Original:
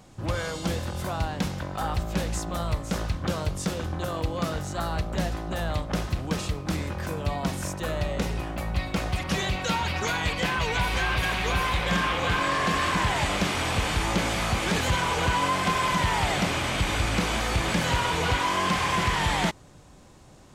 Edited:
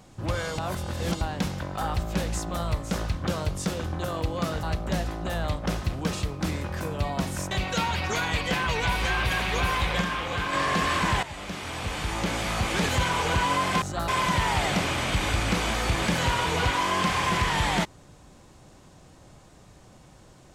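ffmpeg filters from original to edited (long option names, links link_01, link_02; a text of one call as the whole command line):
ffmpeg -i in.wav -filter_complex "[0:a]asplit=10[link_01][link_02][link_03][link_04][link_05][link_06][link_07][link_08][link_09][link_10];[link_01]atrim=end=0.582[link_11];[link_02]atrim=start=0.578:end=1.212,asetpts=PTS-STARTPTS,areverse[link_12];[link_03]atrim=start=1.208:end=4.632[link_13];[link_04]atrim=start=4.888:end=7.772[link_14];[link_05]atrim=start=9.428:end=11.932[link_15];[link_06]atrim=start=11.928:end=12.452,asetpts=PTS-STARTPTS,volume=-4dB[link_16];[link_07]atrim=start=12.448:end=13.15,asetpts=PTS-STARTPTS,afade=type=out:start_time=0.698:duration=0.004:curve=hsin:silence=0.188365[link_17];[link_08]atrim=start=13.15:end=15.742,asetpts=PTS-STARTPTS,afade=type=in:duration=1.56:silence=0.188365[link_18];[link_09]atrim=start=4.628:end=4.892[link_19];[link_10]atrim=start=15.738[link_20];[link_11][link_12]acrossfade=duration=0.004:curve1=hsin:curve2=hsin[link_21];[link_21][link_13]acrossfade=duration=0.004:curve1=hsin:curve2=hsin[link_22];[link_22][link_14]acrossfade=duration=0.004:curve1=hsin:curve2=hsin[link_23];[link_23][link_15]acrossfade=duration=0.004:curve1=hsin:curve2=hsin[link_24];[link_24][link_16]acrossfade=duration=0.004:curve1=hsin:curve2=hsin[link_25];[link_17][link_18]concat=n=2:v=0:a=1[link_26];[link_25][link_26]acrossfade=duration=0.004:curve1=hsin:curve2=hsin[link_27];[link_27][link_19]acrossfade=duration=0.004:curve1=hsin:curve2=hsin[link_28];[link_28][link_20]acrossfade=duration=0.004:curve1=hsin:curve2=hsin" out.wav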